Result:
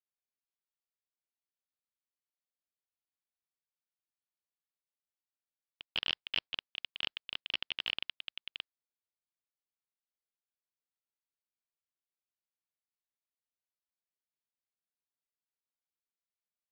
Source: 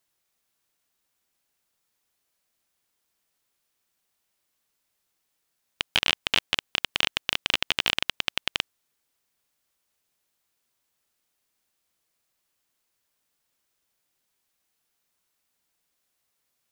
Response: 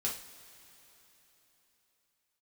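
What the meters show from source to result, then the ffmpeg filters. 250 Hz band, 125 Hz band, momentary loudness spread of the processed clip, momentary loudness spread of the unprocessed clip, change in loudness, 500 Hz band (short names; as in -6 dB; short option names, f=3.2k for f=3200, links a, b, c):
-16.0 dB, -16.0 dB, 10 LU, 6 LU, -11.5 dB, -16.0 dB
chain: -af "agate=range=-33dB:threshold=-18dB:ratio=3:detection=peak,aresample=11025,asoftclip=type=tanh:threshold=-29dB,aresample=44100,volume=8.5dB"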